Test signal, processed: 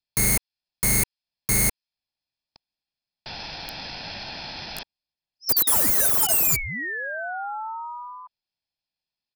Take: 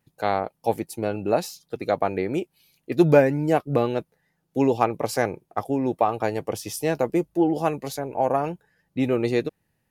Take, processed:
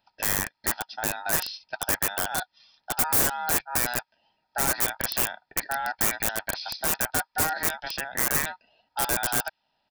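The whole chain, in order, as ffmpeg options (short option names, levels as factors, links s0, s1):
-filter_complex "[0:a]acrossover=split=3000[s0][s1];[s1]acompressor=threshold=0.02:ratio=4:attack=1:release=60[s2];[s0][s2]amix=inputs=2:normalize=0,highpass=200,aeval=exprs='val(0)*sin(2*PI*1100*n/s)':c=same,aresample=11025,asoftclip=type=hard:threshold=0.126,aresample=44100,aexciter=amount=7.3:drive=2.9:freq=2300,acrossover=split=1100[s3][s4];[s3]acompressor=threshold=0.00794:ratio=8[s5];[s5][s4]amix=inputs=2:normalize=0,aecho=1:1:1.2:0.47,aeval=exprs='(mod(8.91*val(0)+1,2)-1)/8.91':c=same,equalizer=f=3300:w=0.68:g=-14.5,volume=2.11"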